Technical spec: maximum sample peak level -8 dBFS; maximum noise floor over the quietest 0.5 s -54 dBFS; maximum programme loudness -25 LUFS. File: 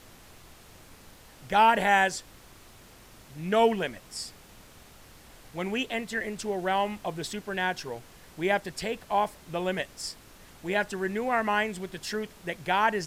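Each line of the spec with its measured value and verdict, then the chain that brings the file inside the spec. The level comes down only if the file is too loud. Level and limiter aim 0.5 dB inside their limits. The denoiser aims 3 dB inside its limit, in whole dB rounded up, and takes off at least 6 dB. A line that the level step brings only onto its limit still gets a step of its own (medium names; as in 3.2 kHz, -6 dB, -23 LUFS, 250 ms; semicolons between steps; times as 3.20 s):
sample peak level -9.5 dBFS: pass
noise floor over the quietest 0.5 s -52 dBFS: fail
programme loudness -28.5 LUFS: pass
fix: noise reduction 6 dB, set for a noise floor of -52 dBFS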